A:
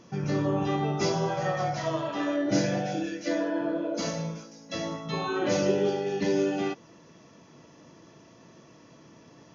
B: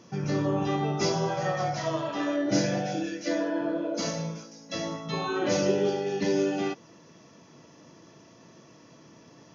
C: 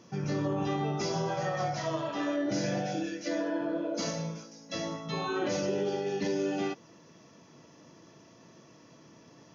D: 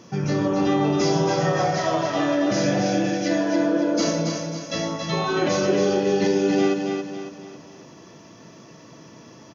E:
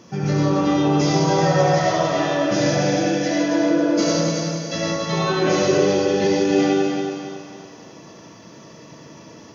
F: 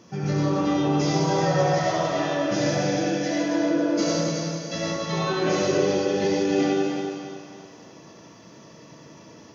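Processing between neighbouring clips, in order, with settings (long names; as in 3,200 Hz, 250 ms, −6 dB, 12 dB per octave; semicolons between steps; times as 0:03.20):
high-pass filter 71 Hz; parametric band 5,400 Hz +3 dB 0.63 octaves
brickwall limiter −19.5 dBFS, peak gain reduction 6 dB; level −2.5 dB
repeating echo 276 ms, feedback 42%, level −5 dB; level +8.5 dB
convolution reverb, pre-delay 75 ms, DRR −1 dB
flanger 1.4 Hz, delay 9.1 ms, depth 7 ms, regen −83%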